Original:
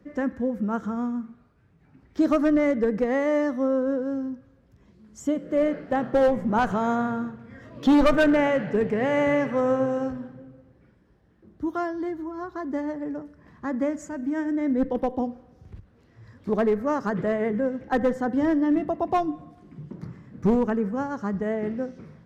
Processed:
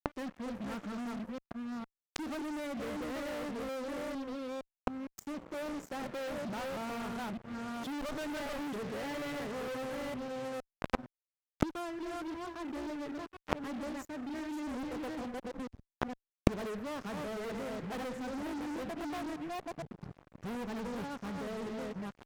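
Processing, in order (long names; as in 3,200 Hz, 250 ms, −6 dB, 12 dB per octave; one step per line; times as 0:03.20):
delay that plays each chunk backwards 461 ms, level −3 dB
fuzz pedal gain 34 dB, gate −39 dBFS
gate with flip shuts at −24 dBFS, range −35 dB
level +11 dB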